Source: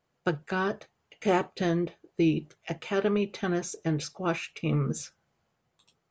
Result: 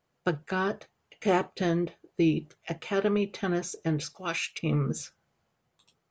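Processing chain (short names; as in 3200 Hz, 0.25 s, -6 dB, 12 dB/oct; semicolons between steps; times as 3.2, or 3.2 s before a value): 4.15–4.59 tilt shelf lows -9.5 dB, about 1400 Hz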